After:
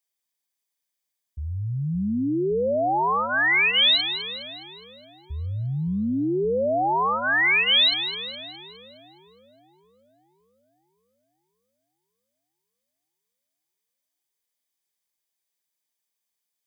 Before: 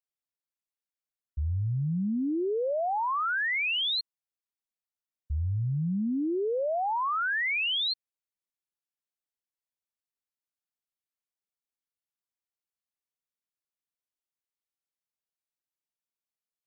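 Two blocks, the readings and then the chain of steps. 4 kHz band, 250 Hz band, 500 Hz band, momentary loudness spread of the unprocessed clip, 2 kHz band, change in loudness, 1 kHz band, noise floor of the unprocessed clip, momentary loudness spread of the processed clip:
+10.0 dB, +4.5 dB, +6.0 dB, 8 LU, +8.0 dB, +7.0 dB, +6.0 dB, below −85 dBFS, 18 LU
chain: high-shelf EQ 2,300 Hz +8.5 dB
notch comb filter 1,400 Hz
echo with a time of its own for lows and highs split 680 Hz, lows 566 ms, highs 207 ms, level −10 dB
level +5 dB

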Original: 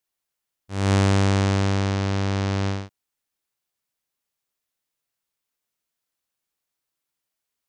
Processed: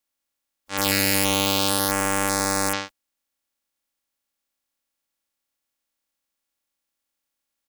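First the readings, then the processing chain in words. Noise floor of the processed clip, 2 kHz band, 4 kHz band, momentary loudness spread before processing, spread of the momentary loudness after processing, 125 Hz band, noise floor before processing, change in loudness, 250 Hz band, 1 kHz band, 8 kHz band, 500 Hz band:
−82 dBFS, +5.5 dB, +8.5 dB, 9 LU, 9 LU, −13.0 dB, −84 dBFS, +1.5 dB, −2.5 dB, +4.0 dB, +13.5 dB, +0.5 dB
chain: ceiling on every frequency bin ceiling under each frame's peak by 24 dB
wrap-around overflow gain 9 dB
comb filter 3.6 ms, depth 68%

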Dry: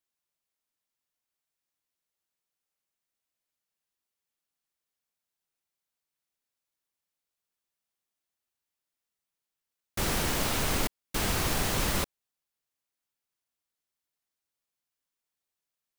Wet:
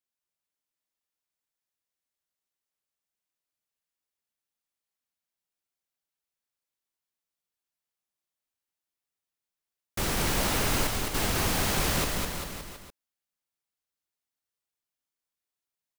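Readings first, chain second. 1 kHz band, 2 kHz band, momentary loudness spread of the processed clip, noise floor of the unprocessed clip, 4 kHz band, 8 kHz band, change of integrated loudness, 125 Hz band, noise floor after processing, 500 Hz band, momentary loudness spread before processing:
+2.5 dB, +2.5 dB, 13 LU, below −85 dBFS, +2.0 dB, +2.5 dB, +1.5 dB, +2.0 dB, below −85 dBFS, +2.5 dB, 5 LU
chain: leveller curve on the samples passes 1
bouncing-ball delay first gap 210 ms, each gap 0.9×, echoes 5
level −3 dB

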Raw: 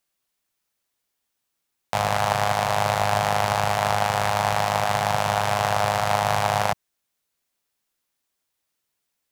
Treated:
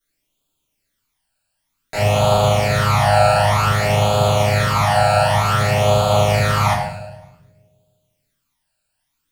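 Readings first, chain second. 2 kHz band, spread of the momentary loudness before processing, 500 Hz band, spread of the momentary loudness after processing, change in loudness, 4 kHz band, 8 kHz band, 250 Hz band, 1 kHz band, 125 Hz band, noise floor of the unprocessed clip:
+4.5 dB, 2 LU, +8.5 dB, 5 LU, +6.5 dB, +6.0 dB, +4.5 dB, +9.0 dB, +4.0 dB, +12.5 dB, −79 dBFS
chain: on a send: echo with a time of its own for lows and highs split 540 Hz, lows 158 ms, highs 106 ms, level −12 dB
on the sum: all-pass phaser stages 12, 0.54 Hz, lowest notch 340–1,900 Hz
rectangular room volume 84 cubic metres, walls mixed, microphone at 2.9 metres
level −3.5 dB

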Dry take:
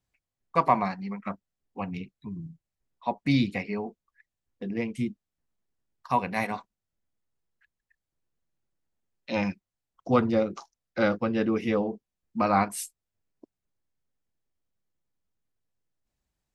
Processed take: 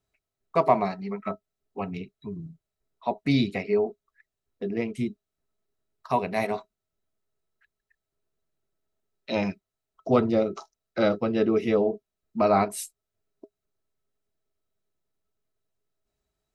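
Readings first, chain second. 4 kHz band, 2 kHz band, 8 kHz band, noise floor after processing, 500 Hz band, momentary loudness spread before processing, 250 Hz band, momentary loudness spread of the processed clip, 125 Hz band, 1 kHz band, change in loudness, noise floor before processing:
+2.0 dB, −2.0 dB, 0.0 dB, below −85 dBFS, +5.0 dB, 16 LU, +1.0 dB, 16 LU, 0.0 dB, −0.5 dB, +1.5 dB, below −85 dBFS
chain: hollow resonant body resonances 410/640/1,300/3,900 Hz, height 14 dB, ringing for 85 ms
dynamic equaliser 1,400 Hz, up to −6 dB, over −38 dBFS, Q 1.8

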